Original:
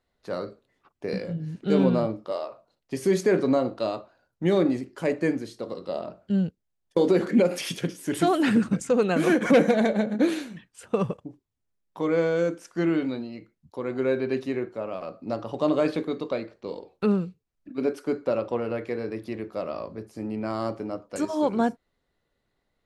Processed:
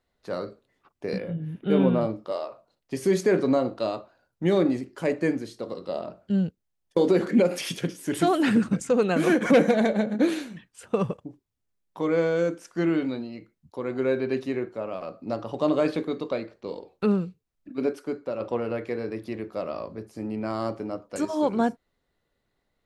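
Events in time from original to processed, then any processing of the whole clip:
1.18–2.02 s: time-frequency box 3.8–9.2 kHz -15 dB
17.85–18.40 s: fade out quadratic, to -6 dB

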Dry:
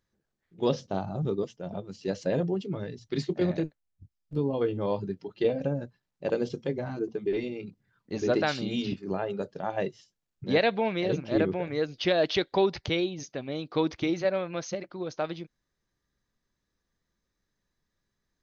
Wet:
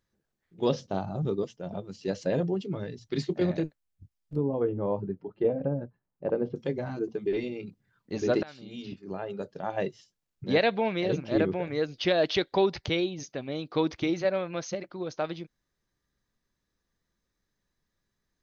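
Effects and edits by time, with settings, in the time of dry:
4.36–6.56 s: low-pass 1.2 kHz
8.43–9.83 s: fade in, from -22.5 dB

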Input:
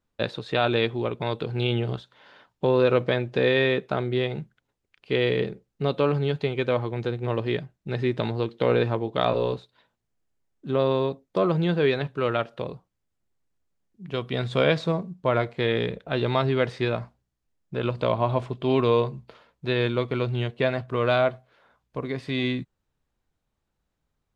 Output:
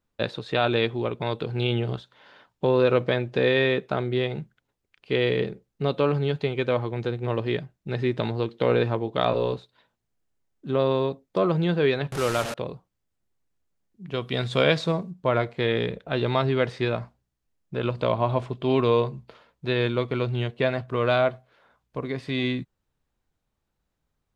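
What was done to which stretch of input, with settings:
12.12–12.54 s: one-bit delta coder 64 kbps, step -25 dBFS
14.22–15.11 s: treble shelf 3.1 kHz +6.5 dB

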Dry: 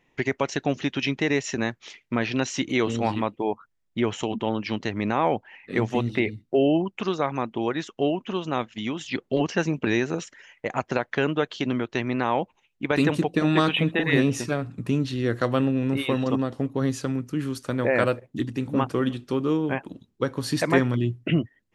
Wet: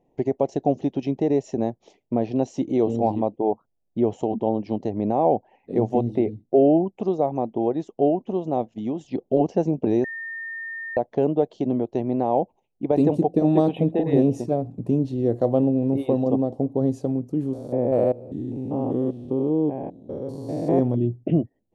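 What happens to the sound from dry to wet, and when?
10.04–10.97 s: bleep 1.82 kHz -8 dBFS
17.53–20.79 s: spectrogram pixelated in time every 200 ms
whole clip: FFT filter 110 Hz 0 dB, 750 Hz +6 dB, 1.4 kHz -24 dB, 7.3 kHz -13 dB

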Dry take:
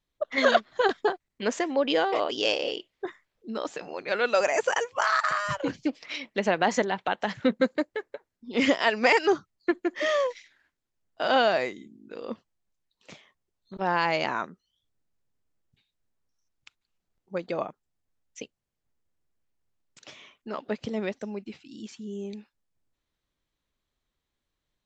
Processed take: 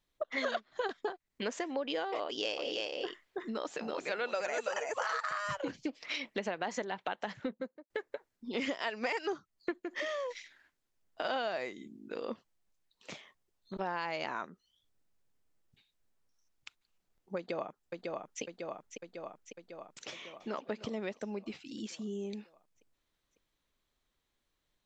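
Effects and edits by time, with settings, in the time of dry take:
2.24–5.26 s: delay 330 ms -4.5 dB
7.17–7.90 s: studio fade out
9.77–11.25 s: compression, threshold -29 dBFS
17.37–18.42 s: echo throw 550 ms, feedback 65%, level -8 dB
20.10–20.69 s: echo throw 300 ms, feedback 15%, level -14 dB
whole clip: compression 4:1, threshold -36 dBFS; peaking EQ 83 Hz -4.5 dB 2.7 oct; trim +2 dB

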